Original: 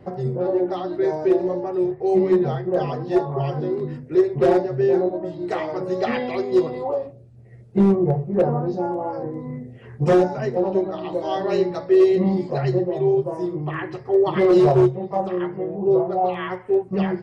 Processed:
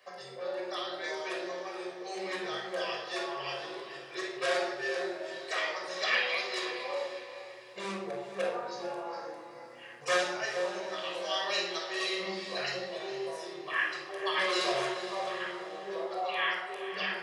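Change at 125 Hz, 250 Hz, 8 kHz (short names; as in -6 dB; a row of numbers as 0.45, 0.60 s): -30.0 dB, -22.0 dB, n/a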